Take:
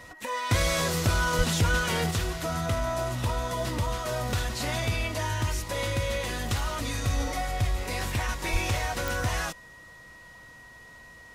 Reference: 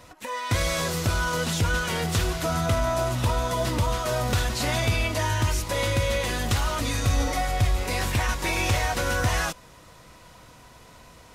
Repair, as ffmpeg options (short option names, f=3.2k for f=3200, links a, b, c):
-filter_complex "[0:a]adeclick=t=4,bandreject=f=1.9k:w=30,asplit=3[a][b][c];[a]afade=t=out:st=1.37:d=0.02[d];[b]highpass=f=140:w=0.5412,highpass=f=140:w=1.3066,afade=t=in:st=1.37:d=0.02,afade=t=out:st=1.49:d=0.02[e];[c]afade=t=in:st=1.49:d=0.02[f];[d][e][f]amix=inputs=3:normalize=0,asplit=3[g][h][i];[g]afade=t=out:st=8.52:d=0.02[j];[h]highpass=f=140:w=0.5412,highpass=f=140:w=1.3066,afade=t=in:st=8.52:d=0.02,afade=t=out:st=8.64:d=0.02[k];[i]afade=t=in:st=8.64:d=0.02[l];[j][k][l]amix=inputs=3:normalize=0,asetnsamples=n=441:p=0,asendcmd='2.11 volume volume 4.5dB',volume=0dB"